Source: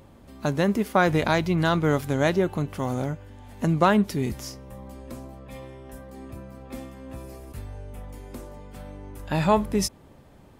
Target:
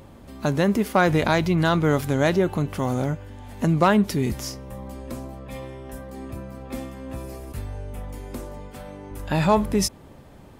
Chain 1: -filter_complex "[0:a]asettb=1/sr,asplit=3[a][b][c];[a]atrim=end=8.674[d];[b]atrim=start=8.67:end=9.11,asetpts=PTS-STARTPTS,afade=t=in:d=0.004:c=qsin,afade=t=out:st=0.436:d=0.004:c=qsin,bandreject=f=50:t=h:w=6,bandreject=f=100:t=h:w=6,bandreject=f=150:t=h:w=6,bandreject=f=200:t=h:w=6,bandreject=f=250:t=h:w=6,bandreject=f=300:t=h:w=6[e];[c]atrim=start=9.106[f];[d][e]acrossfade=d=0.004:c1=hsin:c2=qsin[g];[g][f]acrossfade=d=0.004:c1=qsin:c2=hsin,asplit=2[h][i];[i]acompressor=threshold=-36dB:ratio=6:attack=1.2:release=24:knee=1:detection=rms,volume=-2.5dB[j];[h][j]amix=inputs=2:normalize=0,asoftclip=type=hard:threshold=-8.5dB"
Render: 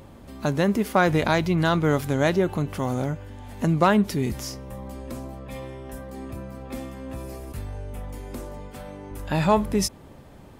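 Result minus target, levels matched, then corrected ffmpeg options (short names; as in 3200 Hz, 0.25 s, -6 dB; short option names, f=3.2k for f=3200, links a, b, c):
compressor: peak gain reduction +8 dB
-filter_complex "[0:a]asettb=1/sr,asplit=3[a][b][c];[a]atrim=end=8.674[d];[b]atrim=start=8.67:end=9.11,asetpts=PTS-STARTPTS,afade=t=in:d=0.004:c=qsin,afade=t=out:st=0.436:d=0.004:c=qsin,bandreject=f=50:t=h:w=6,bandreject=f=100:t=h:w=6,bandreject=f=150:t=h:w=6,bandreject=f=200:t=h:w=6,bandreject=f=250:t=h:w=6,bandreject=f=300:t=h:w=6[e];[c]atrim=start=9.106[f];[d][e]acrossfade=d=0.004:c1=hsin:c2=qsin[g];[g][f]acrossfade=d=0.004:c1=qsin:c2=hsin,asplit=2[h][i];[i]acompressor=threshold=-26.5dB:ratio=6:attack=1.2:release=24:knee=1:detection=rms,volume=-2.5dB[j];[h][j]amix=inputs=2:normalize=0,asoftclip=type=hard:threshold=-8.5dB"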